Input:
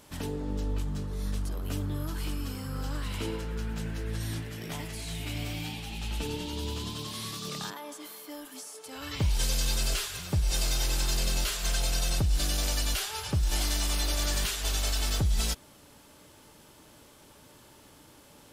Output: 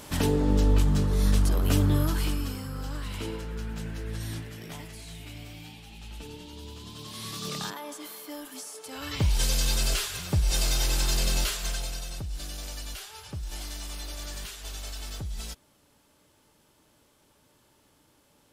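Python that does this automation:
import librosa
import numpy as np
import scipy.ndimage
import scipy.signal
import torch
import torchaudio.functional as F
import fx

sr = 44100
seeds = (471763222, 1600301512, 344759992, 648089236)

y = fx.gain(x, sr, db=fx.line((1.95, 10.0), (2.75, -1.0), (4.36, -1.0), (5.46, -8.5), (6.8, -8.5), (7.44, 2.5), (11.43, 2.5), (12.08, -9.0)))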